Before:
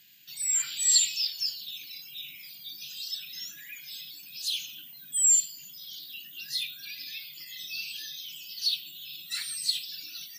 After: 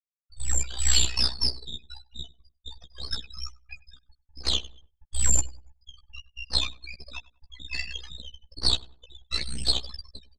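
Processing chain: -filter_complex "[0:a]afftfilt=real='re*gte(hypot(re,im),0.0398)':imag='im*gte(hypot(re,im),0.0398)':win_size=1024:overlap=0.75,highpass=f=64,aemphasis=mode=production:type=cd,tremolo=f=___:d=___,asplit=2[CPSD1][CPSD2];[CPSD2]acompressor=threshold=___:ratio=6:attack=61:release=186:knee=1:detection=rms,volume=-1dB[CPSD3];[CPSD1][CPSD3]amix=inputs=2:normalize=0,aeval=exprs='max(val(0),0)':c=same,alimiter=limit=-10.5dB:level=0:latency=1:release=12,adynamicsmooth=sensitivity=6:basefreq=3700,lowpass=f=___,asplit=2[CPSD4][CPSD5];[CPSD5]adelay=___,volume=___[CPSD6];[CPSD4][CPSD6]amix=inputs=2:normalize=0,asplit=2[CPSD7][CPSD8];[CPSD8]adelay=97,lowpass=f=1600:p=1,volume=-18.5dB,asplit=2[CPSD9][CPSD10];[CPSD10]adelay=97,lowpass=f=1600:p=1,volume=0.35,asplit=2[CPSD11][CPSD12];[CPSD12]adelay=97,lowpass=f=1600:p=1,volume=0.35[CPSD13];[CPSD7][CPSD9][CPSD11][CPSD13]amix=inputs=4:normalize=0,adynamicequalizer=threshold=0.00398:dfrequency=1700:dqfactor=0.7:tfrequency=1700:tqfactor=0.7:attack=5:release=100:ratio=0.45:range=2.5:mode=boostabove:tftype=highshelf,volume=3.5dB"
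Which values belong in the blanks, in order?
62, 0.71, -32dB, 5300, 14, -5.5dB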